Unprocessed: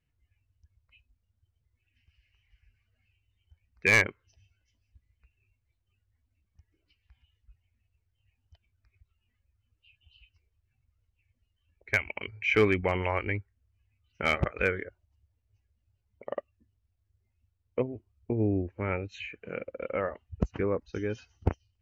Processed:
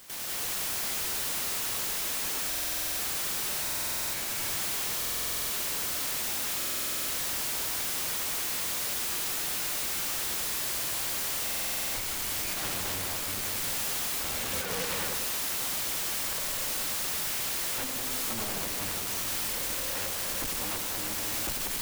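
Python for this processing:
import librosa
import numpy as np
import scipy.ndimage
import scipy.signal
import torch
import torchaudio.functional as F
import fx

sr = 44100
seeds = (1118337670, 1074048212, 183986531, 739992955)

y = fx.lower_of_two(x, sr, delay_ms=3.6)
y = fx.low_shelf(y, sr, hz=330.0, db=7.5)
y = fx.quant_dither(y, sr, seeds[0], bits=6, dither='triangular')
y = fx.double_bandpass(y, sr, hz=300.0, octaves=1.4, at=(14.34, 14.85))
y = fx.echo_heads(y, sr, ms=97, heads='first and second', feedback_pct=50, wet_db=-12.5)
y = fx.power_curve(y, sr, exponent=0.35)
y = (np.mod(10.0 ** (23.0 / 20.0) * y + 1.0, 2.0) - 1.0) / 10.0 ** (23.0 / 20.0)
y = fx.buffer_glitch(y, sr, at_s=(2.48, 3.62, 4.99, 6.57, 11.43), block=2048, repeats=10)
y = F.gain(torch.from_numpy(y), -4.5).numpy()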